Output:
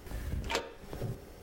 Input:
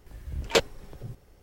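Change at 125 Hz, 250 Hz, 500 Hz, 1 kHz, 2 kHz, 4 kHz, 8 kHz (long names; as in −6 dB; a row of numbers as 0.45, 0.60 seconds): −1.0, −4.0, −11.5, −5.5, −8.0, −11.0, −10.0 decibels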